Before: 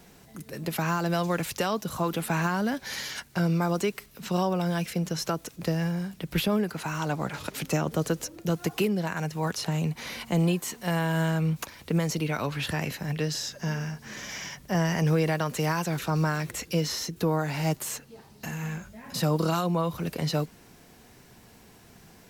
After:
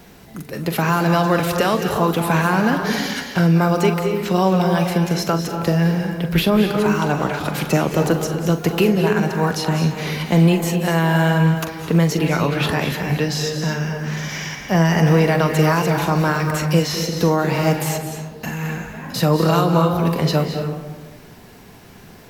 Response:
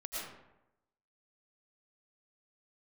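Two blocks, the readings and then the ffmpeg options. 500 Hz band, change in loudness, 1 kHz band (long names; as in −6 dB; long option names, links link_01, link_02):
+11.0 dB, +10.0 dB, +10.5 dB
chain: -filter_complex "[0:a]equalizer=frequency=8300:width=0.82:gain=-5.5,asplit=2[link_01][link_02];[1:a]atrim=start_sample=2205,asetrate=28665,aresample=44100,adelay=42[link_03];[link_02][link_03]afir=irnorm=-1:irlink=0,volume=-8dB[link_04];[link_01][link_04]amix=inputs=2:normalize=0,volume=9dB"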